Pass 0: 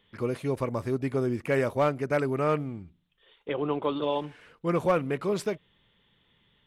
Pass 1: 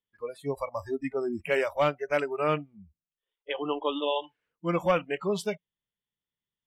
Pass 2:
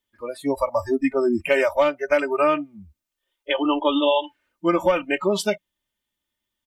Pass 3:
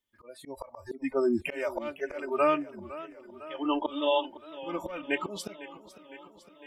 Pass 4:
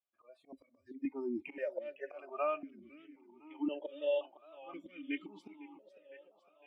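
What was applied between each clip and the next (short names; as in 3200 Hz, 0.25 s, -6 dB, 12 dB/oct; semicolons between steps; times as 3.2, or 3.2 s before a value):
spectral noise reduction 29 dB; dynamic EQ 2900 Hz, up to +8 dB, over -53 dBFS, Q 2
comb 3.3 ms, depth 81%; compressor 10:1, threshold -23 dBFS, peak gain reduction 8.5 dB; gain +8.5 dB
auto swell 0.279 s; warbling echo 0.506 s, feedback 68%, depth 121 cents, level -16.5 dB; gain -5 dB
vowel sequencer 1.9 Hz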